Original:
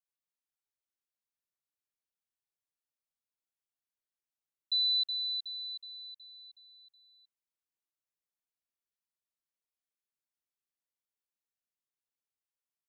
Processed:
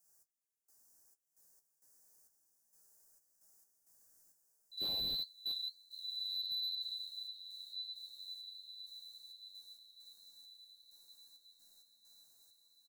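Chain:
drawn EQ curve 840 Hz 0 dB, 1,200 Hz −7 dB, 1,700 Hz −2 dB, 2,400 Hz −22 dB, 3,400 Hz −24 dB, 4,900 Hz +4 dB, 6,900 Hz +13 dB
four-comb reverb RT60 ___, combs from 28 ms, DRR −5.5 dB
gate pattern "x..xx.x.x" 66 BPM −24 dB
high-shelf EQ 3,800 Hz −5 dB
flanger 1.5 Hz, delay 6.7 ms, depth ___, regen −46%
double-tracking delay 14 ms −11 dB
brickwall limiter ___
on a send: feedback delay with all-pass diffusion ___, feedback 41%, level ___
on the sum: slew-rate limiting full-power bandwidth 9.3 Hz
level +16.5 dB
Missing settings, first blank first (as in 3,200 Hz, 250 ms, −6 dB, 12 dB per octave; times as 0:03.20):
1.7 s, 7.9 ms, −40.5 dBFS, 1,525 ms, −6 dB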